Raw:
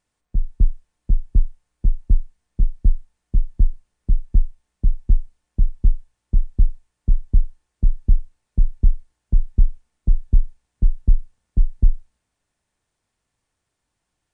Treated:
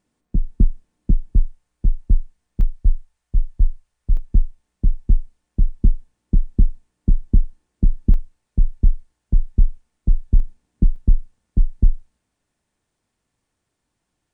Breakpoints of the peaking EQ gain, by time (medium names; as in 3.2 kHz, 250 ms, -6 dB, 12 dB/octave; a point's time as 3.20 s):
peaking EQ 250 Hz 1.8 oct
+13 dB
from 1.33 s +3 dB
from 2.61 s -6.5 dB
from 4.17 s +5 dB
from 5.82 s +11 dB
from 8.14 s +3.5 dB
from 10.40 s +12.5 dB
from 10.96 s +5.5 dB